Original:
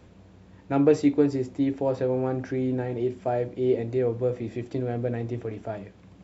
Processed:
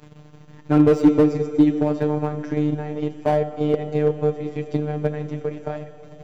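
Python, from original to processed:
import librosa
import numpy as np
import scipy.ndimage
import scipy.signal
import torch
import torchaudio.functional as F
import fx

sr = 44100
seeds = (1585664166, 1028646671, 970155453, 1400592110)

p1 = fx.level_steps(x, sr, step_db=13)
p2 = x + (p1 * 10.0 ** (-2.0 / 20.0))
p3 = fx.robotise(p2, sr, hz=150.0)
p4 = fx.transient(p3, sr, attack_db=6, sustain_db=-5)
p5 = fx.rev_schroeder(p4, sr, rt60_s=3.4, comb_ms=27, drr_db=9.5)
p6 = fx.slew_limit(p5, sr, full_power_hz=85.0)
y = p6 * 10.0 ** (3.0 / 20.0)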